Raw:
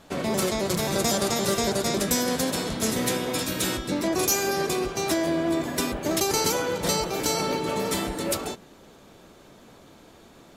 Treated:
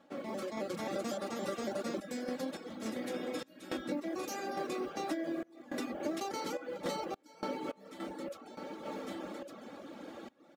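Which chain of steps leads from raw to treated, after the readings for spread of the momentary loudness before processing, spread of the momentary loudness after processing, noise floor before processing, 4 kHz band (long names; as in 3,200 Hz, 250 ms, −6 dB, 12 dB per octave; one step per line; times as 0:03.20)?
5 LU, 9 LU, −52 dBFS, −18.5 dB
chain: noise that follows the level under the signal 18 dB
high-pass filter 210 Hz 12 dB per octave
comb filter 3.6 ms, depth 54%
on a send: single-tap delay 1,156 ms −22 dB
on the sum: reversed playback
upward compression, threshold −26 dBFS
reversed playback
low-pass filter 1,500 Hz 6 dB per octave
flanger 1.6 Hz, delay 3.4 ms, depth 8.6 ms, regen −73%
sample-and-hold tremolo, depth 95%
downward compressor 3 to 1, threshold −39 dBFS, peak gain reduction 10.5 dB
notch filter 970 Hz, Q 8.3
reverb reduction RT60 0.53 s
level +4 dB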